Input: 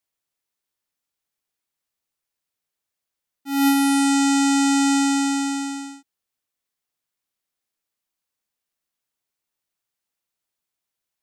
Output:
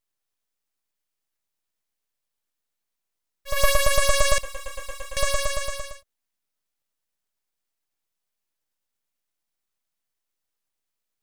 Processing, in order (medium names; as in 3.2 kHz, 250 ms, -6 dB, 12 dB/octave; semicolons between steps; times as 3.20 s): LFO high-pass saw up 8.8 Hz 260–3200 Hz; 4.38–5.17 s: inharmonic resonator 250 Hz, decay 0.25 s, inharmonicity 0.008; full-wave rectifier; trim +1.5 dB